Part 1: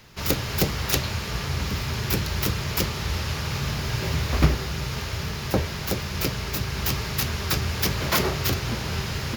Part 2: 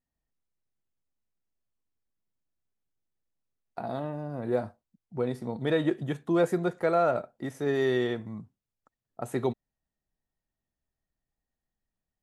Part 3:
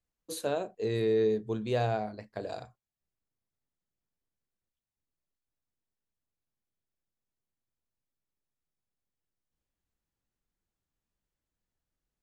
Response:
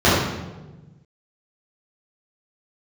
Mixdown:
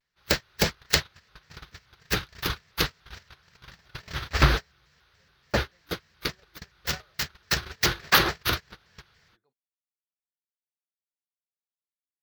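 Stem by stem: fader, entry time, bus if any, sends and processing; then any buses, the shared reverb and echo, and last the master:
+1.0 dB, 0.00 s, no send, dry
-9.5 dB, 0.00 s, no send, dry
off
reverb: off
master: gate -21 dBFS, range -36 dB; fifteen-band EQ 100 Hz -7 dB, 250 Hz -8 dB, 1600 Hz +10 dB, 4000 Hz +7 dB, 10000 Hz -6 dB; shaped vibrato square 3.5 Hz, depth 160 cents

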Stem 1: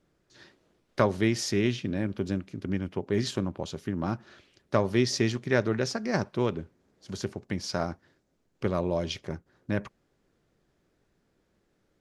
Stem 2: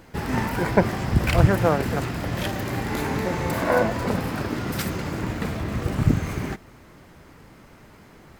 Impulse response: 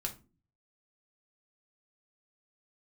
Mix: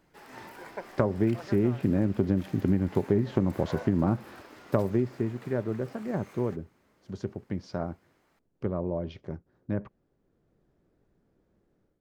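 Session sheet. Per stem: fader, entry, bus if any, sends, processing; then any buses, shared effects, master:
4.85 s -4.5 dB -> 5.29 s -15 dB, 0.00 s, no send, treble ducked by the level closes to 1600 Hz, closed at -23 dBFS; tilt shelf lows +7.5 dB, about 1400 Hz; AGC gain up to 10.5 dB
-17.5 dB, 0.00 s, no send, HPF 430 Hz 12 dB/oct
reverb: off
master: compressor 6:1, threshold -20 dBFS, peak gain reduction 8 dB

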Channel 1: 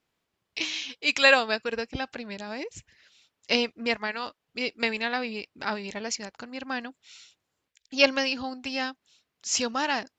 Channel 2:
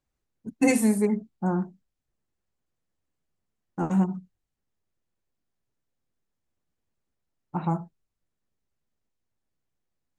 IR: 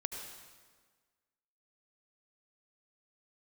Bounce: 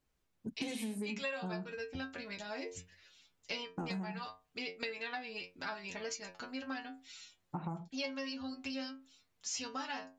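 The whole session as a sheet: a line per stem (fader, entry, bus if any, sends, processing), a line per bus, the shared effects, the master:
-1.0 dB, 0.00 s, no send, AGC gain up to 7 dB; metallic resonator 88 Hz, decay 0.31 s, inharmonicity 0.002
+0.5 dB, 0.00 s, no send, compressor, threshold -25 dBFS, peak gain reduction 9 dB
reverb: off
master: compressor 4:1, threshold -39 dBFS, peak gain reduction 18 dB

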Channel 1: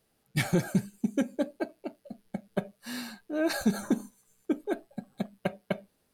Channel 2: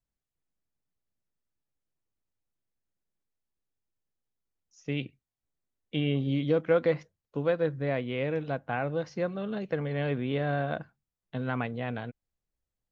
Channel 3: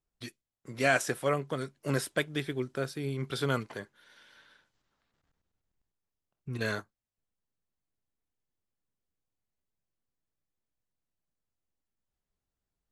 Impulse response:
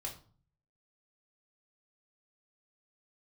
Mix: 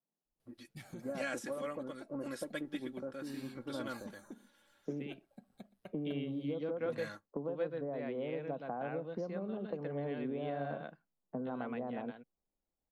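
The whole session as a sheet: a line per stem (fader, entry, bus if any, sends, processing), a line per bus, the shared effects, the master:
-12.5 dB, 0.40 s, no bus, no send, echo send -23.5 dB, compressor 3:1, threshold -38 dBFS, peak gain reduction 13.5 dB
+1.5 dB, 0.00 s, bus A, no send, echo send -15 dB, steep high-pass 160 Hz 36 dB/oct
-9.0 dB, 0.25 s, bus A, no send, echo send -5.5 dB, comb 3.6 ms, depth 72%
bus A: 0.0 dB, LPF 1000 Hz 24 dB/oct; compressor 12:1, threshold -36 dBFS, peak gain reduction 18 dB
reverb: off
echo: echo 0.12 s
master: dry

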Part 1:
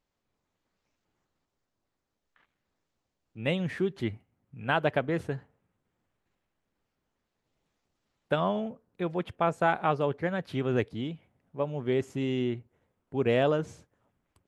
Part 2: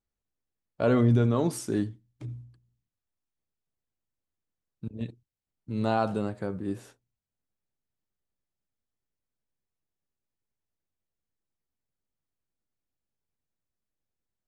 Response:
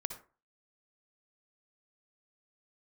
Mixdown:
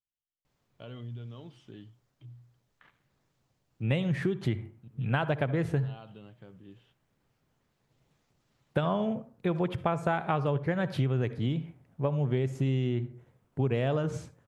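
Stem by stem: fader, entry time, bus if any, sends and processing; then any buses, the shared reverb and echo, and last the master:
+2.0 dB, 0.45 s, send -5 dB, dry
-19.5 dB, 0.00 s, no send, compressor 3:1, threshold -26 dBFS, peak gain reduction 7 dB; synth low-pass 3100 Hz, resonance Q 11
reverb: on, RT60 0.35 s, pre-delay 52 ms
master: bell 130 Hz +11 dB 0.56 oct; compressor 6:1, threshold -25 dBFS, peak gain reduction 12 dB

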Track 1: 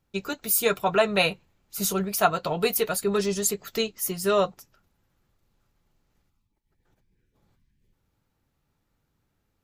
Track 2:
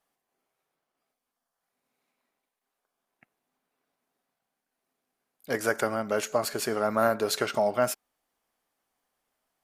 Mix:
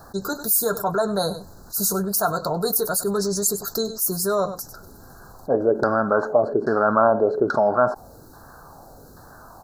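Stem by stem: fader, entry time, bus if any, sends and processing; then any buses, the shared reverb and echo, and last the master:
-6.5 dB, 0.00 s, no send, echo send -21 dB, high shelf 8000 Hz +8 dB
+2.0 dB, 0.00 s, no send, no echo send, LFO low-pass saw down 1.2 Hz 310–2900 Hz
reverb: off
echo: echo 98 ms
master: Chebyshev band-stop 1600–4100 Hz, order 4; fast leveller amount 50%

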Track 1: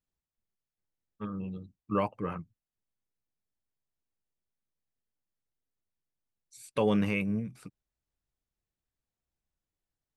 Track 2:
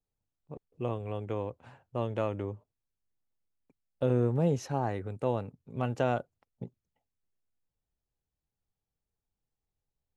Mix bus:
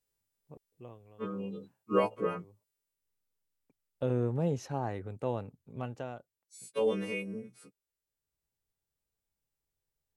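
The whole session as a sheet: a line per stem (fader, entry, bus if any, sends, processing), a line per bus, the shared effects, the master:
2.73 s -2 dB -> 3.2 s -9.5 dB, 0.00 s, no send, frequency quantiser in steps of 2 st; HPF 140 Hz 24 dB/oct; bell 450 Hz +11.5 dB 0.62 oct
-3.5 dB, 0.00 s, no send, auto duck -20 dB, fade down 0.80 s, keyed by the first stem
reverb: off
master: dry

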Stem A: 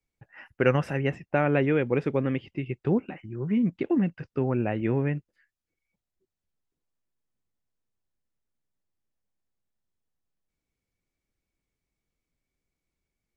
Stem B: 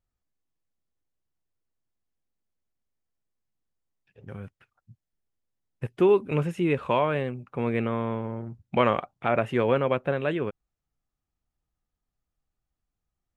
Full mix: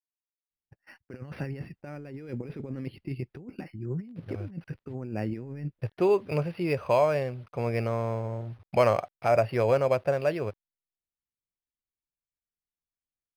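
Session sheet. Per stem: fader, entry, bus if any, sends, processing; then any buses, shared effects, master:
-3.5 dB, 0.50 s, no send, gate -48 dBFS, range -20 dB; bell 980 Hz -7 dB 2.3 oct; negative-ratio compressor -31 dBFS, ratio -0.5
-5.0 dB, 0.00 s, no send, fifteen-band EQ 100 Hz +10 dB, 250 Hz -4 dB, 630 Hz +10 dB, 2500 Hz +6 dB; bit-crush 9-bit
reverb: off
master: decimation joined by straight lines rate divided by 6×

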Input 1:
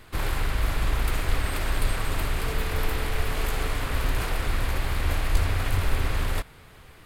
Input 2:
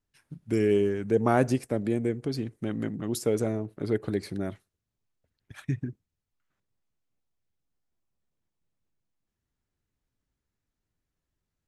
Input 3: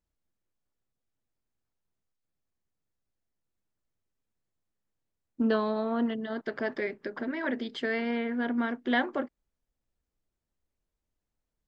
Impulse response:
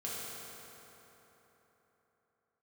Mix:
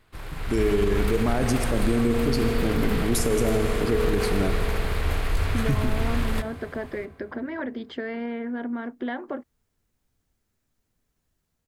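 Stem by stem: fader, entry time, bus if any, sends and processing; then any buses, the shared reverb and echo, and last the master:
-12.5 dB, 0.00 s, send -13.5 dB, AGC gain up to 5 dB
-2.5 dB, 0.00 s, send -7 dB, limiter -19 dBFS, peak gain reduction 9.5 dB; high shelf 6500 Hz +10 dB
-3.0 dB, 0.15 s, no send, high shelf 2500 Hz -10.5 dB; compressor 4:1, threshold -32 dBFS, peak gain reduction 8.5 dB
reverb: on, RT60 3.9 s, pre-delay 3 ms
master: high shelf 6500 Hz -4 dB; AGC gain up to 7 dB; limiter -13 dBFS, peak gain reduction 6.5 dB

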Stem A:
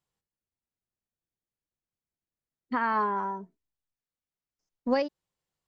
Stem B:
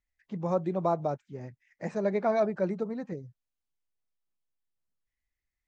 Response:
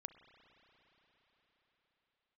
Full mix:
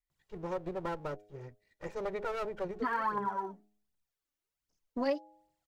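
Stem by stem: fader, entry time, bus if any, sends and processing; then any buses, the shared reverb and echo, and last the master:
-0.5 dB, 0.10 s, no send, phaser 1.3 Hz, delay 3.7 ms, feedback 67%
-5.5 dB, 0.00 s, no send, minimum comb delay 2.1 ms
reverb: off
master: de-hum 104 Hz, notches 8; compressor 2.5:1, threshold -33 dBFS, peak gain reduction 11.5 dB

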